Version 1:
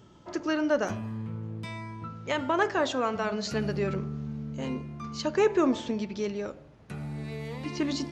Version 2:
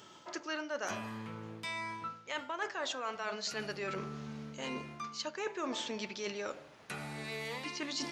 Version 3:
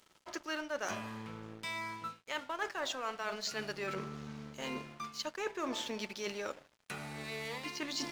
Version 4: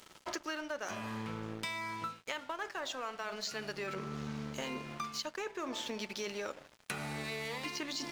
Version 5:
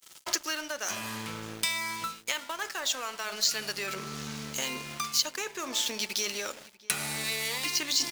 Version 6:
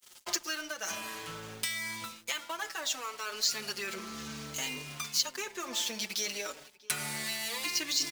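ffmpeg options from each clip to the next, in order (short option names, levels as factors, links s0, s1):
-af "highpass=f=1400:p=1,areverse,acompressor=threshold=0.00562:ratio=5,areverse,volume=2.82"
-af "aeval=exprs='sgn(val(0))*max(abs(val(0))-0.00224,0)':c=same,volume=1.12"
-af "acompressor=threshold=0.00562:ratio=10,volume=2.99"
-filter_complex "[0:a]agate=range=0.0224:threshold=0.00282:ratio=3:detection=peak,asplit=2[s0][s1];[s1]adelay=641.4,volume=0.112,highshelf=f=4000:g=-14.4[s2];[s0][s2]amix=inputs=2:normalize=0,crystalizer=i=6.5:c=0"
-filter_complex "[0:a]asplit=2[s0][s1];[s1]adelay=5.1,afreqshift=-0.57[s2];[s0][s2]amix=inputs=2:normalize=1"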